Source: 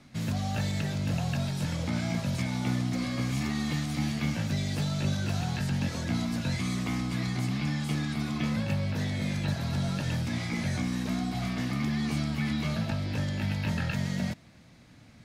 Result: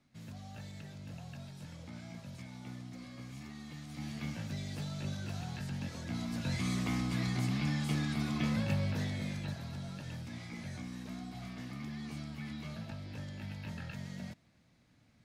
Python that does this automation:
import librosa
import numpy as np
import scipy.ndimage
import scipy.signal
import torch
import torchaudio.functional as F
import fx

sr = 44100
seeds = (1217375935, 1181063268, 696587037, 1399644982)

y = fx.gain(x, sr, db=fx.line((3.75, -17.0), (4.17, -10.0), (6.03, -10.0), (6.68, -3.0), (8.85, -3.0), (9.8, -13.0)))